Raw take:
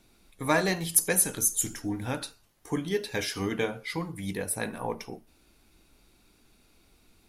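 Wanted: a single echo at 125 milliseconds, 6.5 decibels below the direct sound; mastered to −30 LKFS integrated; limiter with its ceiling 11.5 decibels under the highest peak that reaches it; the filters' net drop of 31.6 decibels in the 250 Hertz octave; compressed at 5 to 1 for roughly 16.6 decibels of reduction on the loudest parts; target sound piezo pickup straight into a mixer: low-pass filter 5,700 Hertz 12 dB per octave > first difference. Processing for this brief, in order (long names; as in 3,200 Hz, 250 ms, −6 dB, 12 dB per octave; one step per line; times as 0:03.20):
parametric band 250 Hz −4.5 dB
downward compressor 5 to 1, threshold −37 dBFS
brickwall limiter −34 dBFS
low-pass filter 5,700 Hz 12 dB per octave
first difference
single-tap delay 125 ms −6.5 dB
level +25 dB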